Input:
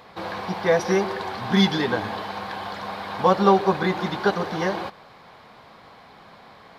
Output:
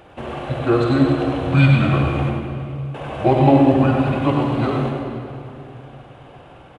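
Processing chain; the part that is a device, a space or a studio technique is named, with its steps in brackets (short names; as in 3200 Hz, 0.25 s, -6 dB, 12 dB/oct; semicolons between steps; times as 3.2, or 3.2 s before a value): 2.29–2.94 passive tone stack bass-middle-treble 6-0-2; monster voice (pitch shift -6 st; low shelf 110 Hz +8 dB; echo 0.102 s -7 dB; reverb RT60 2.7 s, pre-delay 36 ms, DRR 2.5 dB); gain +1 dB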